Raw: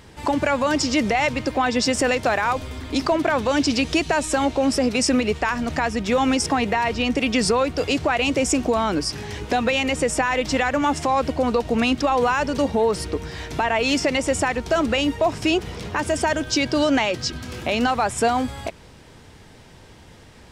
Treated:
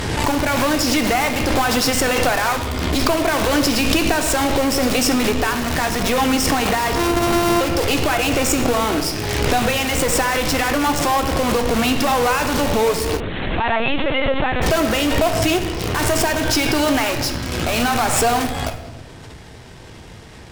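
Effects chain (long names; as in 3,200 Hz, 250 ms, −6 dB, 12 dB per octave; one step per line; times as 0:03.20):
0:06.95–0:07.61: samples sorted by size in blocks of 128 samples
in parallel at −4 dB: wrap-around overflow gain 25.5 dB
on the sum: harmonic generator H 4 −18 dB, 5 −37 dB, 8 −18 dB, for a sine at −10 dBFS
on a send at −6 dB: convolution reverb RT60 1.1 s, pre-delay 3 ms
0:13.20–0:14.62: on the sum: linear-prediction vocoder at 8 kHz pitch kept
background raised ahead of every attack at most 27 dB per second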